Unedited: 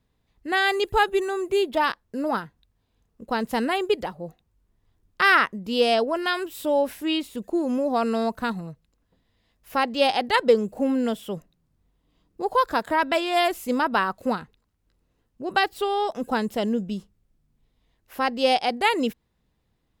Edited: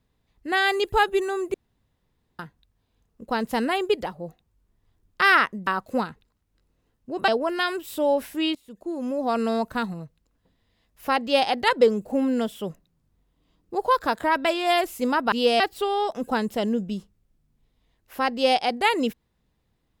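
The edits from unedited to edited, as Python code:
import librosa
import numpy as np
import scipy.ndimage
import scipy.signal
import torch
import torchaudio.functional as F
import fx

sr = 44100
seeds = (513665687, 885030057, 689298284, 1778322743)

y = fx.edit(x, sr, fx.room_tone_fill(start_s=1.54, length_s=0.85),
    fx.swap(start_s=5.67, length_s=0.28, other_s=13.99, other_length_s=1.61),
    fx.fade_in_from(start_s=7.22, length_s=0.88, floor_db=-19.0), tone=tone)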